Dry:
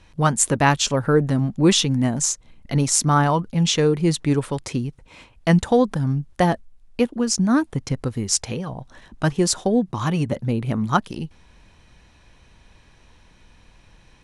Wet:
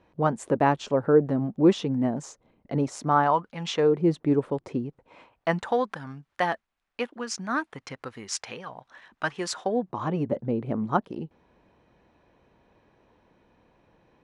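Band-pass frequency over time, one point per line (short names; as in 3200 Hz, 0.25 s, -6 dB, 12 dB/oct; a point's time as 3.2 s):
band-pass, Q 0.9
2.91 s 470 Hz
3.57 s 1400 Hz
4.03 s 420 Hz
4.73 s 420 Hz
5.91 s 1600 Hz
9.5 s 1600 Hz
10.11 s 460 Hz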